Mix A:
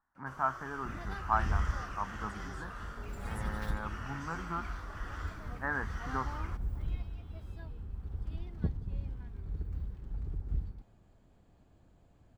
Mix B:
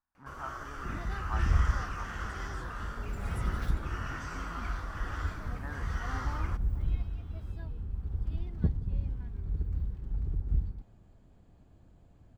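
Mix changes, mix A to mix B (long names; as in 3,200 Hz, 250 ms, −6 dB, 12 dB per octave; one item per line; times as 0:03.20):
speech −11.5 dB
first sound +4.0 dB
master: add low-shelf EQ 310 Hz +5.5 dB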